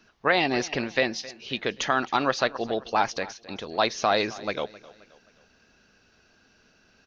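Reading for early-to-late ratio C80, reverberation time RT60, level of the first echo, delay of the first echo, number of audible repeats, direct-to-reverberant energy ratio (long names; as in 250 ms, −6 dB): no reverb audible, no reverb audible, −19.5 dB, 264 ms, 3, no reverb audible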